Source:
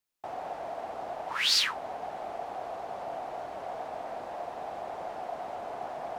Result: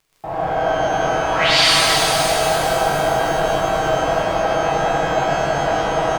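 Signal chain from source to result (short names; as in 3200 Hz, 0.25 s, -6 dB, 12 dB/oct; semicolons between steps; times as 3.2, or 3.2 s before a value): RIAA curve playback; comb 6.2 ms, depth 62%; crackle 16/s -48 dBFS; echo 95 ms -4 dB; shimmer reverb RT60 3.2 s, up +12 st, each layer -8 dB, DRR -8.5 dB; gain +6 dB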